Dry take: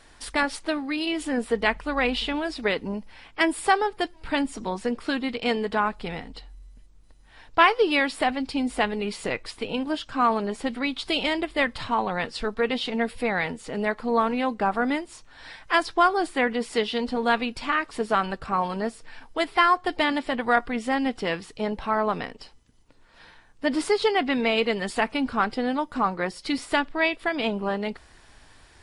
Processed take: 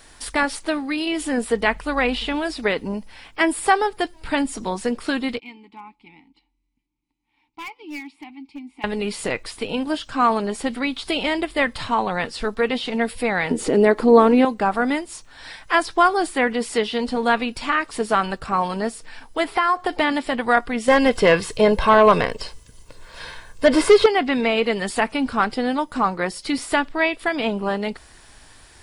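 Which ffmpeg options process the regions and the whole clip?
-filter_complex "[0:a]asettb=1/sr,asplit=3[s0][s1][s2];[s0]atrim=end=5.394[s3];[s1]atrim=start=5.39:end=8.84,asetpts=PTS-STARTPTS,afade=t=in:d=0.004:c=qsin,afade=t=out:st=3.446:d=0.004:c=qsin,asplit=3[s4][s5][s6];[s4]bandpass=f=300:t=q:w=8,volume=1[s7];[s5]bandpass=f=870:t=q:w=8,volume=0.501[s8];[s6]bandpass=f=2240:t=q:w=8,volume=0.355[s9];[s7][s8][s9]amix=inputs=3:normalize=0,equalizer=f=510:t=o:w=2.5:g=-11.5,aeval=exprs='clip(val(0),-1,0.0188)':c=same[s10];[s2]atrim=start=8.836[s11];[s3][s10]acrossfade=d=0.004:c1=hsin:c2=qsin[s12];[s12][s11]acrossfade=d=0.004:c1=qsin:c2=hsin,asettb=1/sr,asplit=3[s13][s14][s15];[s13]atrim=end=13.514[s16];[s14]atrim=start=13.51:end=14.45,asetpts=PTS-STARTPTS,afade=t=in:d=0.004:c=qsin,afade=t=out:st=0.936:d=0.004:c=qsin,acompressor=mode=upward:threshold=0.0562:ratio=2.5:attack=3.2:release=140:knee=2.83:detection=peak,equalizer=f=350:t=o:w=1.3:g=14[s17];[s15]atrim=start=14.446[s18];[s16][s17]acrossfade=d=0.004:c1=hsin:c2=qsin[s19];[s19][s18]acrossfade=d=0.004:c1=qsin:c2=hsin,asettb=1/sr,asplit=3[s20][s21][s22];[s20]atrim=end=19.444[s23];[s21]atrim=start=19.44:end=20,asetpts=PTS-STARTPTS,afade=t=in:d=0.004:c=qsin,afade=t=out:st=0.556:d=0.004:c=qsin,equalizer=f=830:w=0.5:g=6,acompressor=threshold=0.1:ratio=4:attack=3.2:release=140:knee=1:detection=peak[s24];[s22]atrim=start=19.996[s25];[s23][s24]acrossfade=d=0.004:c1=hsin:c2=qsin[s26];[s26][s25]acrossfade=d=0.004:c1=qsin:c2=hsin,asettb=1/sr,asplit=3[s27][s28][s29];[s27]atrim=end=20.884[s30];[s28]atrim=start=20.88:end=24.06,asetpts=PTS-STARTPTS,afade=t=in:d=0.004:c=qsin,afade=t=out:st=3.176:d=0.004:c=qsin,aecho=1:1:1.9:0.49,atrim=end_sample=140238,aeval=exprs='0.355*sin(PI/2*1.78*val(0)/0.355)':c=same[s31];[s29]atrim=start=24.056[s32];[s30][s31]acrossfade=d=0.004:c1=hsin:c2=qsin[s33];[s33][s32]acrossfade=d=0.004:c1=qsin:c2=hsin,acrossover=split=2700[s34][s35];[s35]acompressor=threshold=0.0141:ratio=4:attack=1:release=60[s36];[s34][s36]amix=inputs=2:normalize=0,highshelf=f=7200:g=11.5,volume=1.5"

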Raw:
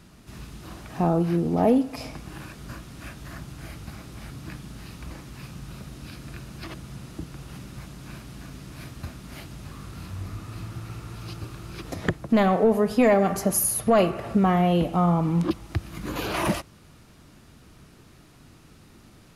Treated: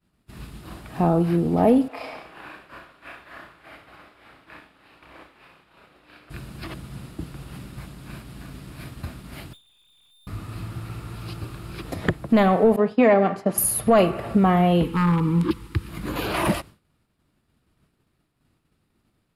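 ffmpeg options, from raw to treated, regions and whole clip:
-filter_complex "[0:a]asettb=1/sr,asplit=3[s0][s1][s2];[s0]atrim=end=1.884[s3];[s1]atrim=start=1.88:end=6.3,asetpts=PTS-STARTPTS,afade=t=in:d=0.004:c=qsin,afade=t=out:st=4.416:d=0.004:c=qsin,acrossover=split=390 3500:gain=0.0794 1 0.158[s4][s5][s6];[s4][s5][s6]amix=inputs=3:normalize=0,aecho=1:1:30|63|99.3|139.2|183.2|231.5:0.794|0.631|0.501|0.398|0.316|0.251,atrim=end_sample=194922[s7];[s2]atrim=start=6.296[s8];[s3][s7]acrossfade=d=0.004:c1=hsin:c2=qsin[s9];[s9][s8]acrossfade=d=0.004:c1=qsin:c2=hsin,asettb=1/sr,asplit=3[s10][s11][s12];[s10]atrim=end=9.534[s13];[s11]atrim=start=9.53:end=10.27,asetpts=PTS-STARTPTS,afade=t=in:d=0.004:c=qsin,afade=t=out:st=0.736:d=0.004:c=qsin,equalizer=f=1700:t=o:w=0.73:g=-9,lowpass=f=3100:t=q:w=0.5098,lowpass=f=3100:t=q:w=0.6013,lowpass=f=3100:t=q:w=0.9,lowpass=f=3100:t=q:w=2.563,afreqshift=-3700,aeval=exprs='(tanh(224*val(0)+0.55)-tanh(0.55))/224':c=same[s14];[s12]atrim=start=10.266[s15];[s13][s14]acrossfade=d=0.004:c1=hsin:c2=qsin[s16];[s16][s15]acrossfade=d=0.004:c1=qsin:c2=hsin,asettb=1/sr,asplit=3[s17][s18][s19];[s17]atrim=end=12.764[s20];[s18]atrim=start=12.76:end=13.58,asetpts=PTS-STARTPTS,afade=t=in:d=0.004:c=qsin,afade=t=out:st=0.816:d=0.004:c=qsin,agate=range=0.0224:threshold=0.0562:ratio=3:release=100:detection=peak,highpass=170,lowpass=4000[s21];[s19]atrim=start=13.576[s22];[s20][s21]acrossfade=d=0.004:c1=hsin:c2=qsin[s23];[s23][s22]acrossfade=d=0.004:c1=qsin:c2=hsin,asettb=1/sr,asplit=3[s24][s25][s26];[s24]atrim=end=14.834[s27];[s25]atrim=start=14.83:end=15.89,asetpts=PTS-STARTPTS,afade=t=in:d=0.004:c=qsin,afade=t=out:st=1.056:d=0.004:c=qsin,aeval=exprs='0.188*(abs(mod(val(0)/0.188+3,4)-2)-1)':c=same,asuperstop=centerf=660:order=12:qfactor=1.9[s28];[s26]atrim=start=15.886[s29];[s27][s28]acrossfade=d=0.004:c1=hsin:c2=qsin[s30];[s30][s29]acrossfade=d=0.004:c1=qsin:c2=hsin,agate=range=0.0224:threshold=0.0126:ratio=3:detection=peak,equalizer=f=6100:w=3.5:g=-10.5,volume=1.33"

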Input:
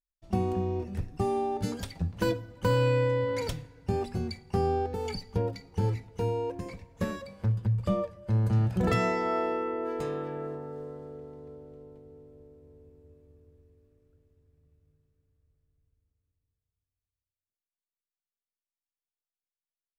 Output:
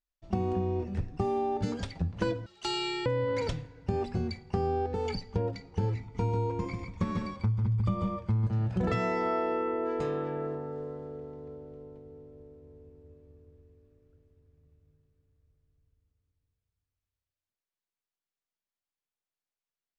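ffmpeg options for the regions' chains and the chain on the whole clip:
-filter_complex "[0:a]asettb=1/sr,asplit=3[s0][s1][s2];[s0]atrim=end=2.464[s3];[s1]atrim=start=2.46:end=3.06,asetpts=PTS-STARTPTS,afade=t=in:d=0.004:c=qsin,afade=t=out:st=0.596:d=0.004:c=qsin,highshelf=f=2700:t=q:w=1.5:g=9,afreqshift=-140,highpass=f=1200:p=1[s4];[s2]atrim=start=3.056[s5];[s3][s4]acrossfade=d=0.004:c1=hsin:c2=qsin[s6];[s6][s5]acrossfade=d=0.004:c1=qsin:c2=hsin,asettb=1/sr,asplit=3[s7][s8][s9];[s7]atrim=end=6.004[s10];[s8]atrim=start=6:end=8.47,asetpts=PTS-STARTPTS,afade=t=in:d=0.004:c=qsin,afade=t=out:st=2.466:d=0.004:c=qsin,aecho=1:1:0.9:0.59,atrim=end_sample=108927,aecho=1:1:145:0.596,atrim=end_sample=108927[s11];[s9]atrim=start=8.466[s12];[s10][s11]acrossfade=d=0.004:c1=hsin:c2=qsin[s13];[s13][s12]acrossfade=d=0.004:c1=qsin:c2=hsin,lowpass=f=7900:w=0.5412,lowpass=f=7900:w=1.3066,highshelf=f=5700:g=-8.5,acompressor=threshold=0.0447:ratio=6,volume=1.26"

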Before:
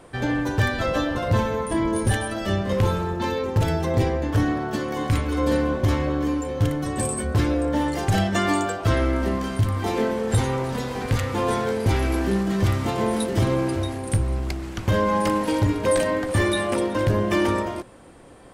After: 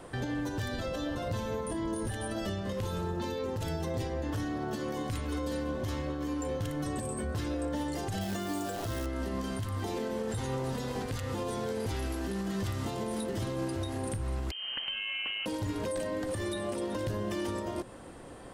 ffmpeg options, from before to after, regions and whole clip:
-filter_complex "[0:a]asettb=1/sr,asplit=3[s0][s1][s2];[s0]atrim=end=8.214[s3];[s1]atrim=start=8.21:end=9.06,asetpts=PTS-STARTPTS,afade=t=in:d=0.004:c=qsin,afade=t=out:st=0.846:d=0.004:c=qsin,acrusher=bits=6:dc=4:mix=0:aa=0.000001,asplit=2[s4][s5];[s5]adelay=37,volume=0.237[s6];[s4][s6]amix=inputs=2:normalize=0,atrim=end_sample=37485[s7];[s2]atrim=start=9.056[s8];[s3][s7]acrossfade=d=0.004:c1=hsin:c2=qsin[s9];[s9][s8]acrossfade=d=0.004:c1=qsin:c2=hsin,asettb=1/sr,asplit=3[s10][s11][s12];[s10]atrim=end=14.514[s13];[s11]atrim=start=14.51:end=15.46,asetpts=PTS-STARTPTS,afade=t=in:d=0.004:c=qsin,afade=t=out:st=0.946:d=0.004:c=qsin,lowpass=f=2700:t=q:w=0.5098,lowpass=f=2700:t=q:w=0.6013,lowpass=f=2700:t=q:w=0.9,lowpass=f=2700:t=q:w=2.563,afreqshift=-3200,acompressor=threshold=0.0447:ratio=3:attack=3.2:release=140:knee=1:detection=peak[s14];[s12]atrim=start=15.456[s15];[s13][s14]acrossfade=d=0.004:c1=hsin:c2=qsin[s16];[s16][s15]acrossfade=d=0.004:c1=qsin:c2=hsin,bandreject=f=2300:w=17,acrossover=split=750|3200[s17][s18][s19];[s17]acompressor=threshold=0.0501:ratio=4[s20];[s18]acompressor=threshold=0.01:ratio=4[s21];[s19]acompressor=threshold=0.0141:ratio=4[s22];[s20][s21][s22]amix=inputs=3:normalize=0,alimiter=level_in=1.19:limit=0.0631:level=0:latency=1:release=221,volume=0.841"

